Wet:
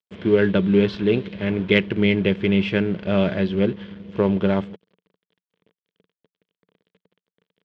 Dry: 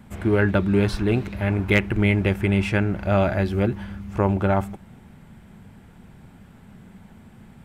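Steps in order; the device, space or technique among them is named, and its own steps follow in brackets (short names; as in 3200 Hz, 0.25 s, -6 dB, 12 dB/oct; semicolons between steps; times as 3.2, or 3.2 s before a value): blown loudspeaker (crossover distortion -39 dBFS; speaker cabinet 140–4600 Hz, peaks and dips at 180 Hz +8 dB, 450 Hz +9 dB, 780 Hz -10 dB, 1300 Hz -5 dB, 3200 Hz +9 dB)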